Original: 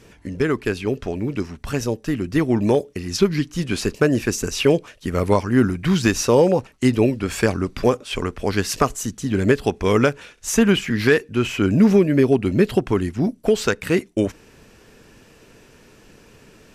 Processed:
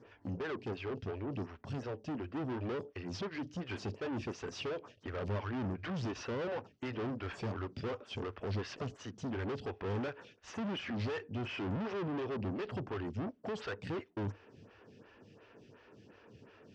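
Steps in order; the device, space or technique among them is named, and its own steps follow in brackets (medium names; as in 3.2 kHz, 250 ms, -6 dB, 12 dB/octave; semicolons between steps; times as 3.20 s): vibe pedal into a guitar amplifier (lamp-driven phase shifter 2.8 Hz; valve stage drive 31 dB, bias 0.4; cabinet simulation 93–4600 Hz, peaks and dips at 100 Hz +10 dB, 2.2 kHz -4 dB, 4 kHz -6 dB); trim -4.5 dB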